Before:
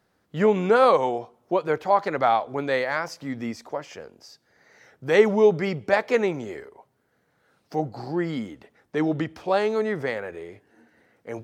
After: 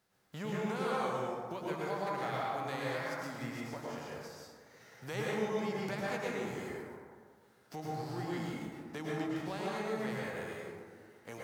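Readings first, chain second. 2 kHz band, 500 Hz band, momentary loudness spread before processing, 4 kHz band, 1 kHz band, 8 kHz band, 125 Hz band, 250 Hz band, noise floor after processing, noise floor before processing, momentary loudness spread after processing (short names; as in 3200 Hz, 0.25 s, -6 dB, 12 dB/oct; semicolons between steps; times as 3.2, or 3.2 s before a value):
-11.0 dB, -16.0 dB, 19 LU, -8.5 dB, -13.0 dB, n/a, -8.0 dB, -11.0 dB, -64 dBFS, -69 dBFS, 16 LU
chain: spectral whitening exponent 0.6; compressor 2.5:1, threshold -36 dBFS, peak gain reduction 17 dB; plate-style reverb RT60 1.8 s, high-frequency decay 0.35×, pre-delay 95 ms, DRR -5.5 dB; gain -9 dB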